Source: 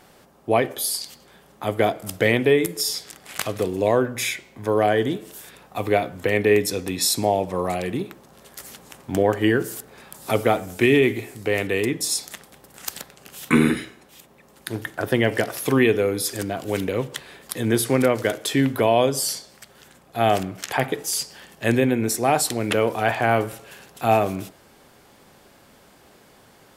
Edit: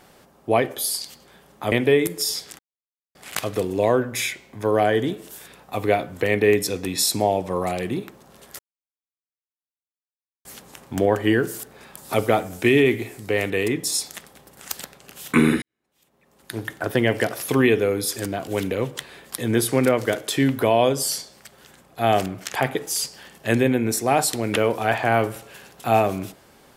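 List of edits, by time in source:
0:01.72–0:02.31: remove
0:03.18: splice in silence 0.56 s
0:08.62: splice in silence 1.86 s
0:13.79–0:14.81: fade in quadratic

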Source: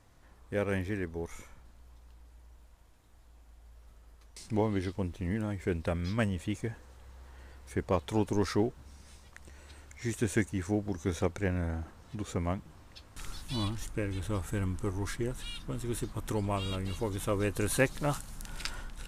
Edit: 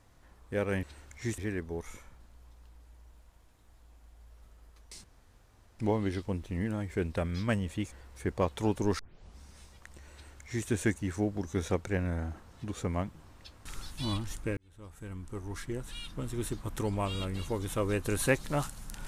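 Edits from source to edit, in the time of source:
0:04.49: splice in room tone 0.75 s
0:06.62–0:07.43: remove
0:08.50: tape start 0.41 s
0:09.63–0:10.18: duplicate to 0:00.83
0:14.08–0:15.72: fade in

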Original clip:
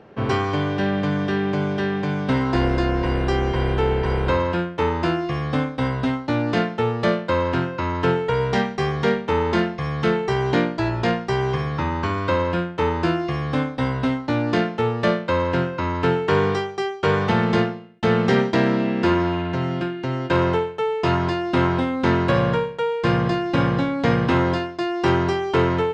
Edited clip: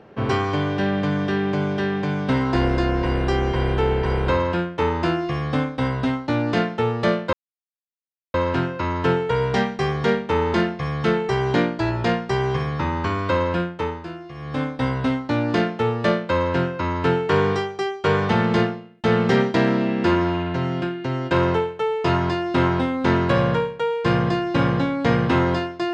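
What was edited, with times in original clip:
0:07.33: splice in silence 1.01 s
0:12.64–0:13.71: duck −13 dB, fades 0.38 s linear

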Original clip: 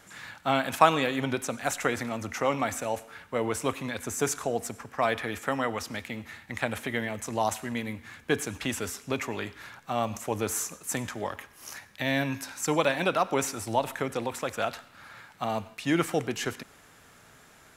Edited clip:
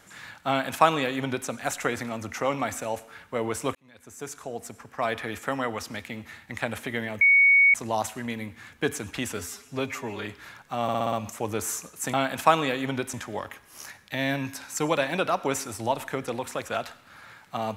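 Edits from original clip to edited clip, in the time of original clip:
0:00.48–0:01.48: duplicate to 0:11.01
0:03.75–0:05.30: fade in
0:07.21: insert tone 2,230 Hz −14 dBFS 0.53 s
0:08.84–0:09.43: time-stretch 1.5×
0:10.00: stutter 0.06 s, 6 plays

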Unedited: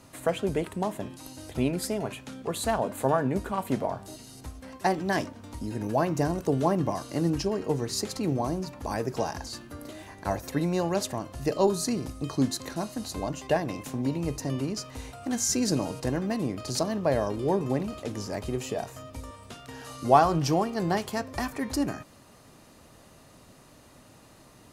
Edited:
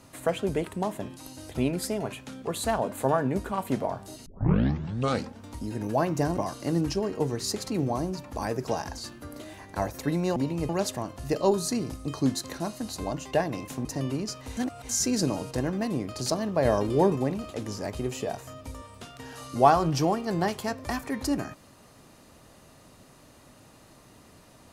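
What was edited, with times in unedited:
0:04.26: tape start 1.15 s
0:06.37–0:06.86: remove
0:14.01–0:14.34: move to 0:10.85
0:15.06–0:15.38: reverse
0:17.14–0:17.65: clip gain +4 dB

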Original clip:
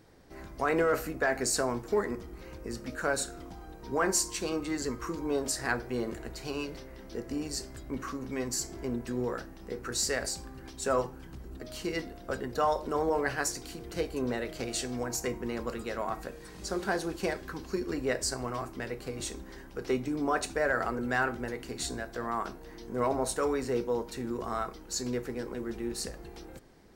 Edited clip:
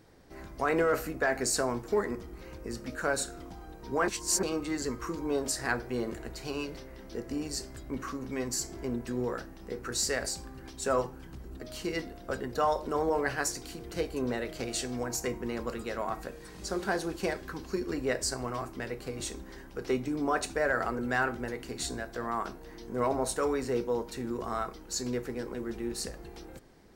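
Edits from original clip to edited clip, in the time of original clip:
0:04.08–0:04.43: reverse

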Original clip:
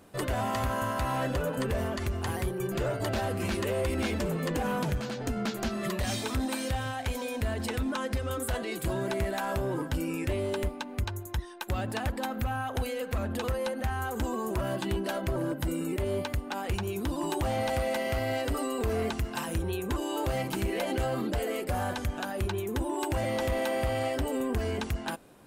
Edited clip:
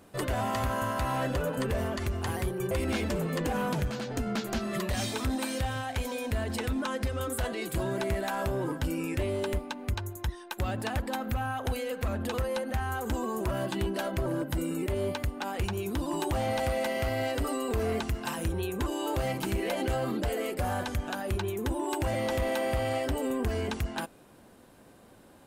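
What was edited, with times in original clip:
0:02.71–0:03.81: remove

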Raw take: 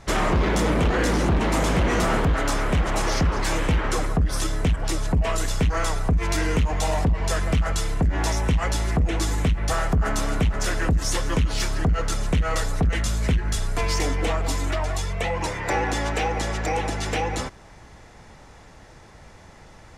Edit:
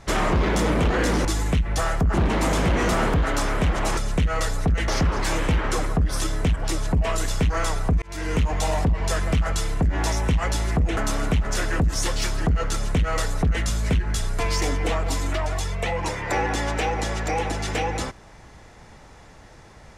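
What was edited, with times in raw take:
0:06.22–0:06.60: fade in
0:09.17–0:10.06: move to 0:01.25
0:11.25–0:11.54: remove
0:12.12–0:13.03: duplicate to 0:03.08

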